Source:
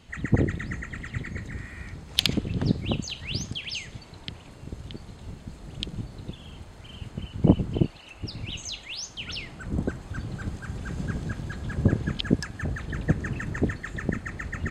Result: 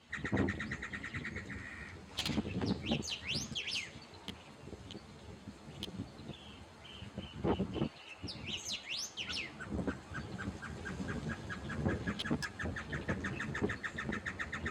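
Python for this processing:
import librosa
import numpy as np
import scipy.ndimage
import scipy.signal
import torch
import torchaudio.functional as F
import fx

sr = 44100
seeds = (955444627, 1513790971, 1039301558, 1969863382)

y = fx.low_shelf(x, sr, hz=210.0, db=-8.5)
y = fx.tube_stage(y, sr, drive_db=26.0, bias=0.65)
y = scipy.signal.sosfilt(scipy.signal.butter(2, 77.0, 'highpass', fs=sr, output='sos'), y)
y = fx.high_shelf(y, sr, hz=10000.0, db=-9.5)
y = fx.ensemble(y, sr)
y = y * librosa.db_to_amplitude(3.0)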